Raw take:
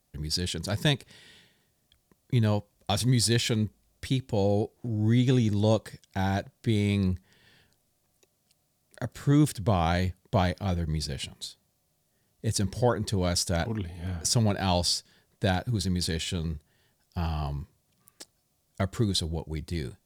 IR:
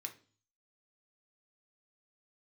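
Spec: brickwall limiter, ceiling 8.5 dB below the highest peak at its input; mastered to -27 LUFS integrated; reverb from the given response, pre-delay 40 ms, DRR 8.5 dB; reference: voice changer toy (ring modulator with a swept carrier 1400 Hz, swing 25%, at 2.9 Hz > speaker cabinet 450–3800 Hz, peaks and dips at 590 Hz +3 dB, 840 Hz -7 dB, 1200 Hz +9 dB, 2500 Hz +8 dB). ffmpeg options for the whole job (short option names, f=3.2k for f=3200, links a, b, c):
-filter_complex "[0:a]alimiter=limit=-20dB:level=0:latency=1,asplit=2[a][b];[1:a]atrim=start_sample=2205,adelay=40[c];[b][c]afir=irnorm=-1:irlink=0,volume=-6dB[d];[a][d]amix=inputs=2:normalize=0,aeval=exprs='val(0)*sin(2*PI*1400*n/s+1400*0.25/2.9*sin(2*PI*2.9*n/s))':c=same,highpass=450,equalizer=f=590:t=q:w=4:g=3,equalizer=f=840:t=q:w=4:g=-7,equalizer=f=1.2k:t=q:w=4:g=9,equalizer=f=2.5k:t=q:w=4:g=8,lowpass=f=3.8k:w=0.5412,lowpass=f=3.8k:w=1.3066,volume=1.5dB"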